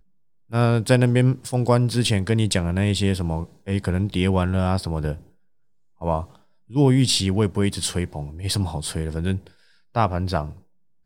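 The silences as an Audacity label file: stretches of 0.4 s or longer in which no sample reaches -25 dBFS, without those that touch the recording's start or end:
5.140000	6.020000	silence
6.210000	6.750000	silence
9.380000	9.960000	silence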